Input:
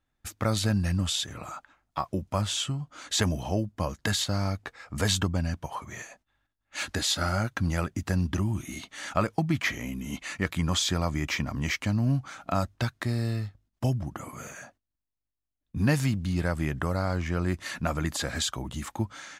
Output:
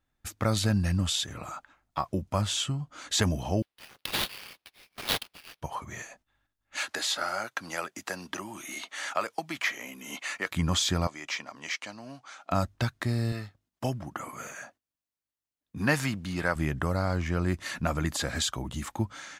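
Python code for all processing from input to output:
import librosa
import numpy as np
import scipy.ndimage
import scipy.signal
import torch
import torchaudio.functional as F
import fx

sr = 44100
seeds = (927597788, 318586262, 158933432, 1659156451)

y = fx.chain(x, sr, fx.steep_highpass(hz=2400.0, slope=48),
    fx.sample_hold(seeds[0], rate_hz=7500.0, jitter_pct=20), at=(3.62, 5.62))
y = fx.chain(y, sr, fx.highpass(hz=530.0, slope=12),
    fx.band_squash(depth_pct=40), at=(6.77, 10.52))
y = fx.chain(y, sr, fx.bandpass_edges(low_hz=640.0, high_hz=7300.0),
    fx.peak_eq(hz=1500.0, db=-4.0, octaves=2.1), at=(11.07, 12.51))
y = fx.chain(y, sr, fx.dynamic_eq(hz=1400.0, q=0.71, threshold_db=-45.0, ratio=4.0, max_db=6),
    fx.highpass(hz=260.0, slope=6), at=(13.32, 16.56))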